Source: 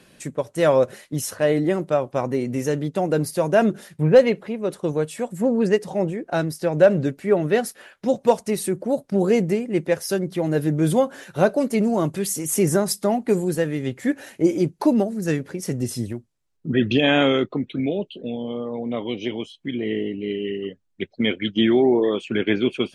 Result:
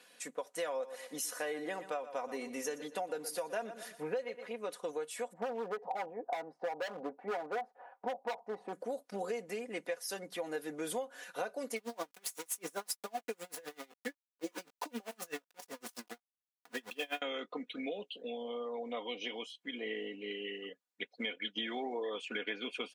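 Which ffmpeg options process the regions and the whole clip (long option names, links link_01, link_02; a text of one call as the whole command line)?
ffmpeg -i in.wav -filter_complex "[0:a]asettb=1/sr,asplit=3[link_01][link_02][link_03];[link_01]atrim=end=0.684[link_04];[link_02]atrim=start=0.68:end=4.52,asetpts=PTS-STARTPTS,afade=type=in:duration=0.004:curve=qsin,afade=type=out:start_time=3.836:duration=0.004:curve=qsin,acompressor=mode=upward:threshold=-34dB:ratio=2.5:attack=3.2:release=140:knee=2.83:detection=peak,aecho=1:1:119|238|357:0.178|0.0551|0.0171,atrim=end_sample=169344[link_05];[link_03]atrim=start=4.516[link_06];[link_04][link_05]acrossfade=duration=0.004:curve1=hsin:curve2=qsin[link_07];[link_07][link_06]acrossfade=duration=0.004:curve1=qsin:curve2=hsin,asettb=1/sr,asplit=3[link_08][link_09][link_10];[link_08]atrim=end=5.334[link_11];[link_09]atrim=start=5.33:end=8.73,asetpts=PTS-STARTPTS,afade=type=in:duration=0.004:curve=qsin,afade=type=out:start_time=3.396:duration=0.004:curve=qsin,lowpass=frequency=820:width_type=q:width=5.8,asoftclip=type=hard:threshold=-14.5dB[link_12];[link_10]atrim=start=8.726[link_13];[link_11][link_12]acrossfade=duration=0.004:curve1=hsin:curve2=qsin[link_14];[link_14][link_13]acrossfade=duration=0.004:curve1=qsin:curve2=hsin,asettb=1/sr,asplit=3[link_15][link_16][link_17];[link_15]atrim=end=11.764[link_18];[link_16]atrim=start=11.76:end=17.22,asetpts=PTS-STARTPTS,afade=type=in:duration=0.004:curve=qsin,afade=type=out:start_time=5.456:duration=0.004:curve=qsin,aeval=exprs='val(0)*gte(abs(val(0)),0.0422)':channel_layout=same,asplit=2[link_19][link_20];[link_20]adelay=18,volume=-13dB[link_21];[link_19][link_21]amix=inputs=2:normalize=0,atrim=end_sample=240786,aeval=exprs='val(0)*pow(10,-34*(0.5-0.5*cos(2*PI*7.8*n/s))/20)':channel_layout=same[link_22];[link_17]atrim=start=17.216[link_23];[link_18][link_22]acrossfade=duration=0.004:curve1=hsin:curve2=qsin[link_24];[link_24][link_23]acrossfade=duration=0.004:curve1=qsin:curve2=hsin,highpass=590,aecho=1:1:4.1:0.66,acompressor=threshold=-28dB:ratio=8,volume=-6.5dB" out.wav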